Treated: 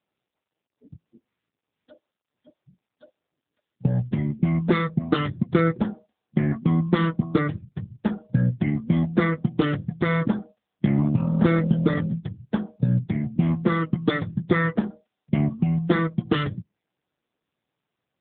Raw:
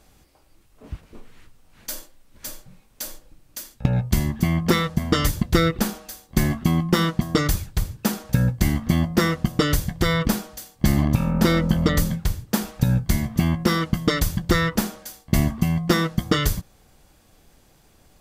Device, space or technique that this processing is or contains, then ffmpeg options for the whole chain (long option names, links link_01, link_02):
mobile call with aggressive noise cancelling: -af "highpass=frequency=110:width=0.5412,highpass=frequency=110:width=1.3066,afftdn=noise_reduction=34:noise_floor=-31" -ar 8000 -c:a libopencore_amrnb -b:a 7950